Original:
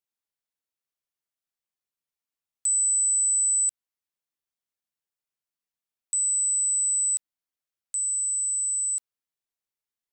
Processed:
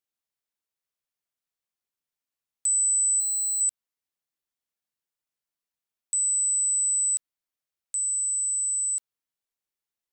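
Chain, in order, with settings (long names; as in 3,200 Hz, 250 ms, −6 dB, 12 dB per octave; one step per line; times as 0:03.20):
0:03.20–0:03.61: hard clipping −25.5 dBFS, distortion −15 dB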